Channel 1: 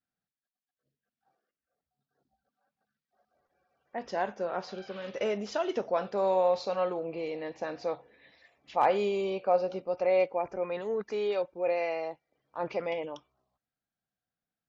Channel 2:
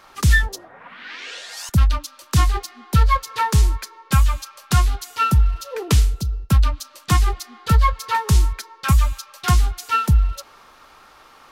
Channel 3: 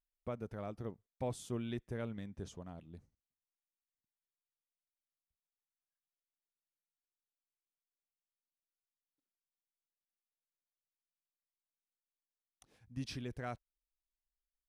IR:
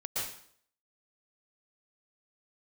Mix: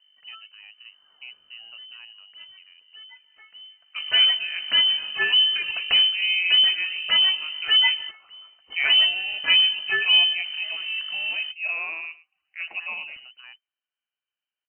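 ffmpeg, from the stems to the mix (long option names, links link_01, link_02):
-filter_complex "[0:a]volume=0dB,asplit=3[link_01][link_02][link_03];[link_02]volume=-17.5dB[link_04];[1:a]aeval=exprs='val(0)+0.0398*(sin(2*PI*50*n/s)+sin(2*PI*2*50*n/s)/2+sin(2*PI*3*50*n/s)/3+sin(2*PI*4*50*n/s)/4+sin(2*PI*5*50*n/s)/5)':channel_layout=same,volume=-4.5dB[link_05];[2:a]volume=-4.5dB[link_06];[link_03]apad=whole_len=507711[link_07];[link_05][link_07]sidechaingate=range=-27dB:threshold=-49dB:ratio=16:detection=peak[link_08];[link_04]aecho=0:1:108:1[link_09];[link_01][link_08][link_06][link_09]amix=inputs=4:normalize=0,lowpass=frequency=2600:width_type=q:width=0.5098,lowpass=frequency=2600:width_type=q:width=0.6013,lowpass=frequency=2600:width_type=q:width=0.9,lowpass=frequency=2600:width_type=q:width=2.563,afreqshift=-3100"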